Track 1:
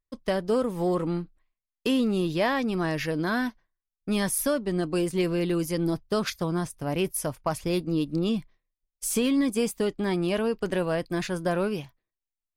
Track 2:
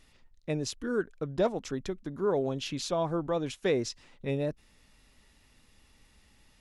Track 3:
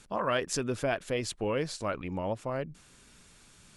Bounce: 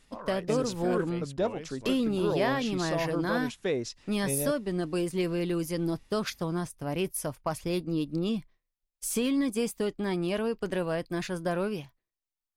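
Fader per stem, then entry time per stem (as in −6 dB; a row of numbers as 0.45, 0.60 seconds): −3.5, −2.0, −11.5 decibels; 0.00, 0.00, 0.00 seconds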